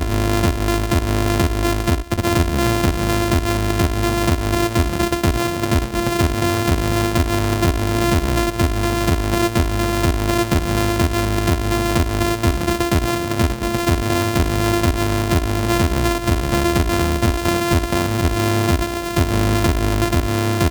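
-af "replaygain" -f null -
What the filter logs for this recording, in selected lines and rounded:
track_gain = +1.7 dB
track_peak = 0.358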